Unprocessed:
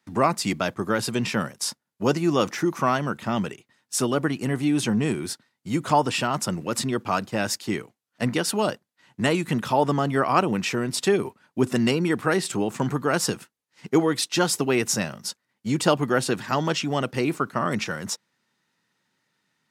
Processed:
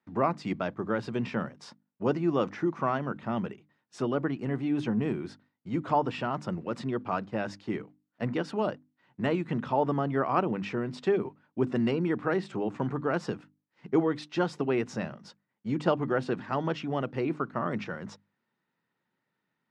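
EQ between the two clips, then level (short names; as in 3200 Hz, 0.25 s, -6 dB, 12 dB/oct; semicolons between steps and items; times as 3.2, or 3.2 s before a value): tape spacing loss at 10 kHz 33 dB; low shelf 95 Hz -5 dB; notches 50/100/150/200/250/300 Hz; -3.0 dB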